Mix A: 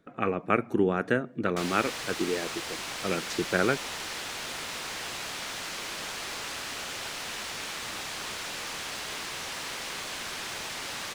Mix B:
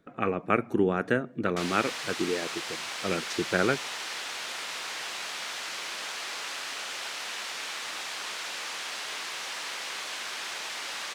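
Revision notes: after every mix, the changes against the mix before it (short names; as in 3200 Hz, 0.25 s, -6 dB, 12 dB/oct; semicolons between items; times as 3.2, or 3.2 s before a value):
background: add weighting filter A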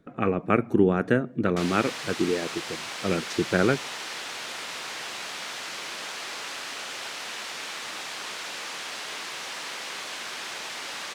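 master: add low shelf 420 Hz +7.5 dB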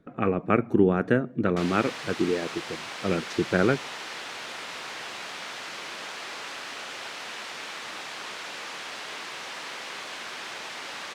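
master: add high shelf 4900 Hz -8 dB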